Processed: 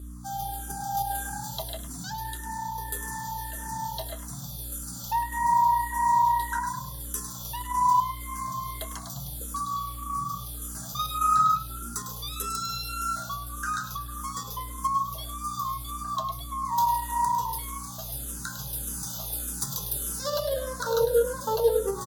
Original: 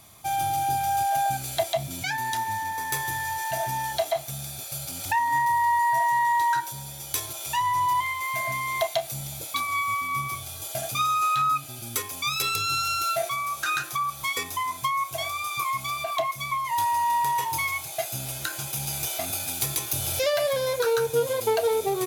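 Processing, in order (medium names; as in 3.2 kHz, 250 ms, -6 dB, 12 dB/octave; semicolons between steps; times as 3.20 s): de-hum 74.53 Hz, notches 14; in parallel at -2 dB: level held to a coarse grid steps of 24 dB; on the sum: static phaser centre 460 Hz, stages 8; on a send: frequency-shifting echo 103 ms, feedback 46%, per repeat +30 Hz, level -8.5 dB; 9.71–10.55 s: on the sum: companded quantiser 6-bit; hum 60 Hz, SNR 11 dB; barber-pole phaser -1.7 Hz; trim -1.5 dB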